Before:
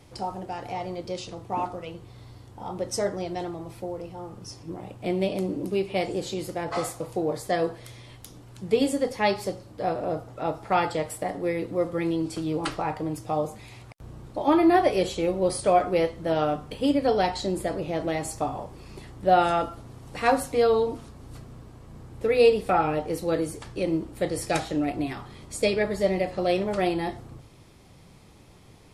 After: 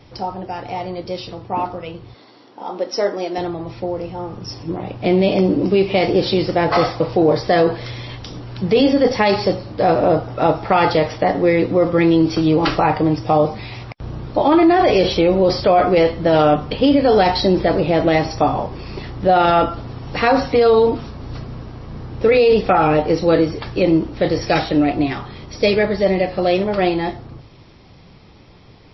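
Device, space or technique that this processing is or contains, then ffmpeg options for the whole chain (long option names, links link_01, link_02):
low-bitrate web radio: -filter_complex "[0:a]asettb=1/sr,asplit=3[link_01][link_02][link_03];[link_01]atrim=end=2.144[link_04];[link_02]atrim=start=2.14:end=3.38,asetpts=PTS-STARTPTS,afade=type=in:duration=0.004:curve=qsin,afade=type=out:start_time=1.236:duration=0.004:curve=qsin,highpass=frequency=240:width=0.5412,highpass=frequency=240:width=1.3066[link_05];[link_03]atrim=start=3.376[link_06];[link_04][link_05]acrossfade=duration=0.004:curve1=hsin:curve2=qsin[link_07];[link_07][link_06]acrossfade=duration=0.004:curve1=qsin:curve2=hsin,dynaudnorm=framelen=880:gausssize=11:maxgain=13.5dB,alimiter=limit=-12.5dB:level=0:latency=1:release=10,volume=7dB" -ar 16000 -c:a libmp3lame -b:a 24k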